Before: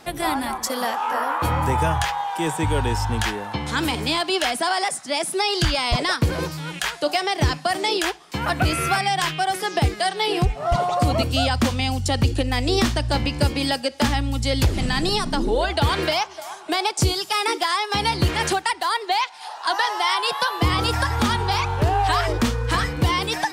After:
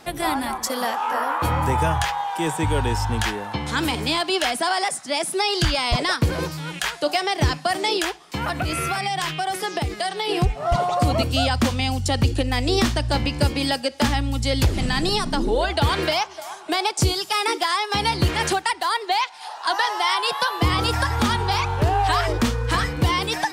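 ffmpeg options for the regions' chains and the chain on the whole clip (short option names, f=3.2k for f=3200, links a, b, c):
-filter_complex "[0:a]asettb=1/sr,asplit=3[a][b][c];[a]atrim=end=8.044[d];[b]atrim=start=8.04:end=10.29,asetpts=PTS-STARTPTS,afade=t=in:d=0.004:c=qsin,afade=t=out:st=2.246:d=0.004:c=qsin,bandreject=f=1.6k:w=28,acompressor=threshold=-20dB:ratio=6:attack=3.2:release=140:knee=1:detection=peak[e];[c]atrim=start=10.286[f];[d][e]acrossfade=d=0.004:c1=hsin:c2=qsin[g];[g][f]acrossfade=d=0.004:c1=qsin:c2=hsin"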